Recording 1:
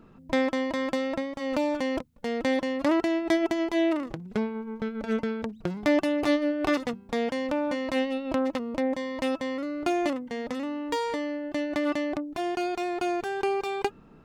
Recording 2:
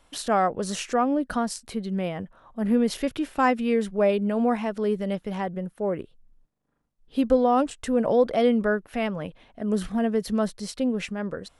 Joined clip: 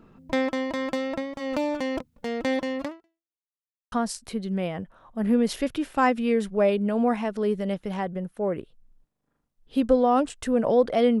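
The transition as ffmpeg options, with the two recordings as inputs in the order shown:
-filter_complex "[0:a]apad=whole_dur=11.2,atrim=end=11.2,asplit=2[s0][s1];[s0]atrim=end=3.39,asetpts=PTS-STARTPTS,afade=t=out:st=2.82:d=0.57:c=exp[s2];[s1]atrim=start=3.39:end=3.92,asetpts=PTS-STARTPTS,volume=0[s3];[1:a]atrim=start=1.33:end=8.61,asetpts=PTS-STARTPTS,afade=t=in:d=0.004:c=hsin[s4];[s2][s3][s4]concat=n=3:v=0:a=1"

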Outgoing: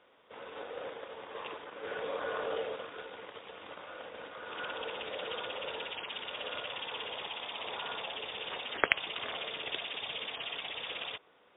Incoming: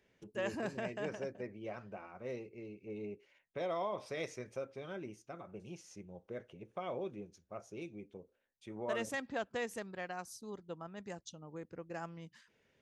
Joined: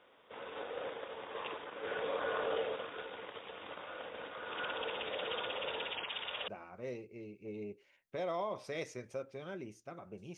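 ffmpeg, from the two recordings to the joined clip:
-filter_complex "[0:a]asettb=1/sr,asplit=3[s0][s1][s2];[s0]atrim=end=6.054[s3];[s1]atrim=start=6.05:end=6.48,asetpts=PTS-STARTPTS,afade=t=in:d=0.004:c=qsin,afade=t=out:st=0.426:d=0.004:c=qsin,equalizer=f=270:t=o:w=1.6:g=-6.5[s4];[s2]atrim=start=6.476[s5];[s3][s4]acrossfade=d=0.004:c1=hsin:c2=qsin[s6];[s6][s5]acrossfade=d=0.004:c1=qsin:c2=hsin,apad=whole_dur=10.37,atrim=end=10.37,atrim=end=6.482[s7];[1:a]atrim=start=1.898:end=5.79[s8];[s7][s8]acrossfade=d=0.004:c1=hsin:c2=hsin"

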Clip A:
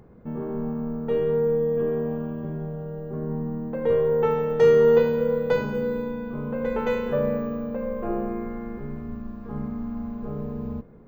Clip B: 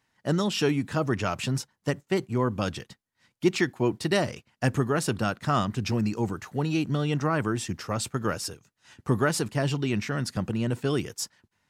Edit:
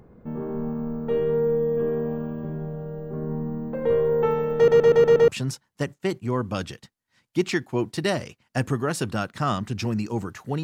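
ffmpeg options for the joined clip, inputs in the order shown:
-filter_complex "[0:a]apad=whole_dur=10.63,atrim=end=10.63,asplit=6[s0][s1][s2][s3][s4][s5];[s0]atrim=end=4.682[s6];[s1]atrim=start=4.558:end=4.682[s7];[s2]atrim=start=4.558:end=4.682[s8];[s3]atrim=start=4.558:end=4.682[s9];[s4]atrim=start=4.558:end=4.682[s10];[s5]atrim=start=4.558:end=4.682[s11];[1:a]atrim=start=1.348:end=6.7[s12];[s6][s7]acrossfade=d=0.004:c1=hsin:c2=hsin[s13];[s13][s8]acrossfade=d=0.004:c1=hsin:c2=hsin[s14];[s14][s9]acrossfade=d=0.004:c1=hsin:c2=hsin[s15];[s15][s10]acrossfade=d=0.004:c1=hsin:c2=hsin[s16];[s16][s11]acrossfade=d=0.004:c1=hsin:c2=hsin[s17];[s17][s12]acrossfade=d=0.004:c1=hsin:c2=hsin"

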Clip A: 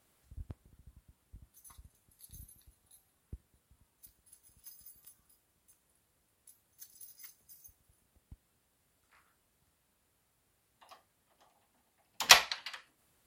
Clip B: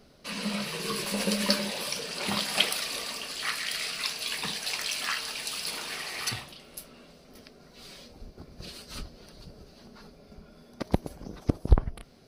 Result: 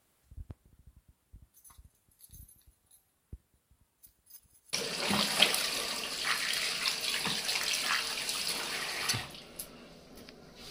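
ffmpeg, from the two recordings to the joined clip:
-filter_complex "[0:a]apad=whole_dur=10.7,atrim=end=10.7,asplit=2[s0][s1];[s0]atrim=end=4.302[s2];[s1]atrim=start=4.298:end=4.732,asetpts=PTS-STARTPTS,areverse[s3];[1:a]atrim=start=1.908:end=7.88[s4];[s2][s3]acrossfade=d=0.004:c1=hsin:c2=hsin[s5];[s5][s4]acrossfade=d=0.004:c1=hsin:c2=hsin"

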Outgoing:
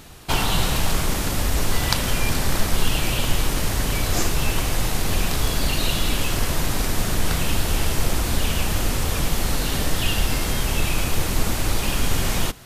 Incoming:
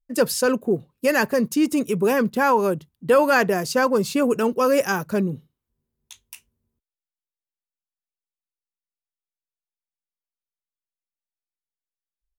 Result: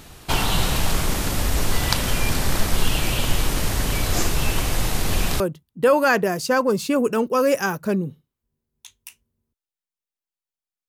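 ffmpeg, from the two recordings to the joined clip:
-filter_complex "[0:a]apad=whole_dur=10.88,atrim=end=10.88,atrim=end=5.402[s0];[1:a]atrim=start=2.658:end=8.14[s1];[s0][s1]acrossfade=d=0.004:c1=hsin:c2=hsin"

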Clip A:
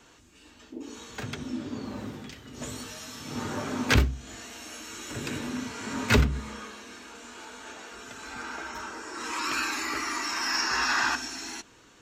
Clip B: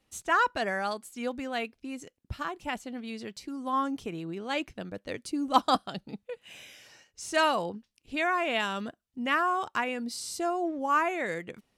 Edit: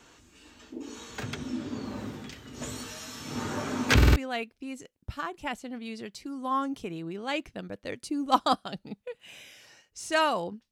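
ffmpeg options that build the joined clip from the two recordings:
-filter_complex "[0:a]apad=whole_dur=10.71,atrim=end=10.71,asplit=4[s0][s1][s2][s3];[s0]atrim=end=4.012[s4];[s1]atrim=start=3.958:end=4.012[s5];[s2]atrim=start=3.958:end=4.012[s6];[s3]atrim=start=3.958:end=4.012[s7];[1:a]atrim=start=1.378:end=7.93[s8];[s4][s5]acrossfade=d=0.004:c1=hsin:c2=hsin[s9];[s9][s6]acrossfade=d=0.004:c1=hsin:c2=hsin[s10];[s10][s7]acrossfade=d=0.004:c1=hsin:c2=hsin[s11];[s11][s8]acrossfade=d=0.004:c1=hsin:c2=hsin"

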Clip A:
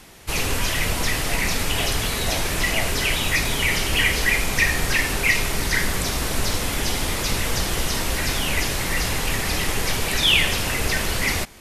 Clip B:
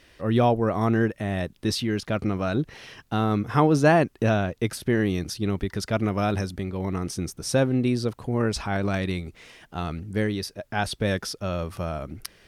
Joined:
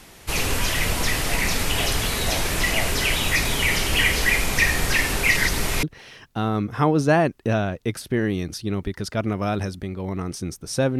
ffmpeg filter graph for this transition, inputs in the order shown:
-filter_complex "[0:a]apad=whole_dur=10.99,atrim=end=10.99,asplit=2[s0][s1];[s0]atrim=end=5.372[s2];[s1]atrim=start=5.368:end=5.832,asetpts=PTS-STARTPTS,areverse[s3];[1:a]atrim=start=2.588:end=7.75[s4];[s2][s3]acrossfade=d=0.004:c1=hsin:c2=hsin[s5];[s5][s4]acrossfade=d=0.004:c1=hsin:c2=hsin"

